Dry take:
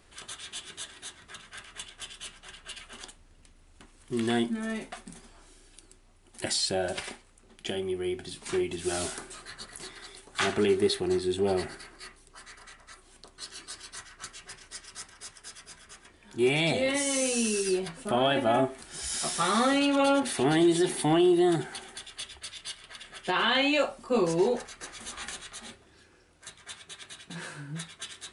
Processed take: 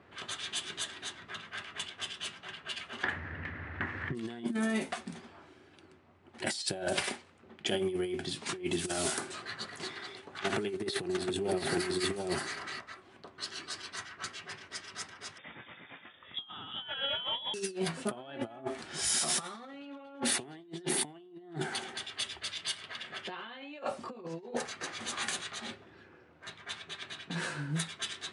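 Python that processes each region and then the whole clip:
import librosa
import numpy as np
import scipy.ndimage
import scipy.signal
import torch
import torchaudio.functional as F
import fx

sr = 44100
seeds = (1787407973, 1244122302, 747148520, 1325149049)

y = fx.chain(x, sr, fx.lowpass_res(hz=1800.0, q=5.7),
    fx.peak_eq(hz=97.0, db=11.0, octaves=0.81),
    fx.env_flatten(amount_pct=50), at=(3.03, 4.15))
y = fx.chain(y, sr, fx.over_compress(threshold_db=-30.0, ratio=-0.5),
    fx.echo_single(ms=717, db=-7.0), at=(10.43, 12.81))
y = fx.chain(y, sr, fx.doubler(ms=21.0, db=-12.0),
    fx.freq_invert(carrier_hz=3600), at=(15.38, 17.54))
y = fx.over_compress(y, sr, threshold_db=-33.0, ratio=-0.5)
y = scipy.signal.sosfilt(scipy.signal.butter(4, 94.0, 'highpass', fs=sr, output='sos'), y)
y = fx.env_lowpass(y, sr, base_hz=1800.0, full_db=-28.0)
y = y * librosa.db_to_amplitude(-1.0)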